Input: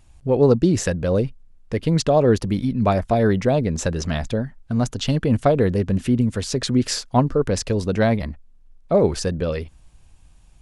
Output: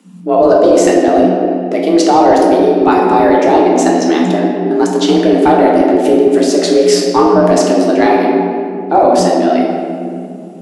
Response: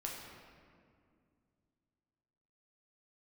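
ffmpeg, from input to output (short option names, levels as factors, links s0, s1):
-filter_complex "[1:a]atrim=start_sample=2205[s0];[0:a][s0]afir=irnorm=-1:irlink=0,afreqshift=170,apsyclip=3.76,volume=0.841"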